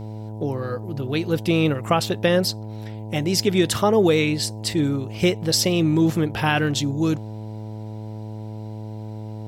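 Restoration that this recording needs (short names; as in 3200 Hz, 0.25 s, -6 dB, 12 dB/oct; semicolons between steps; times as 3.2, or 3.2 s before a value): de-hum 108.1 Hz, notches 9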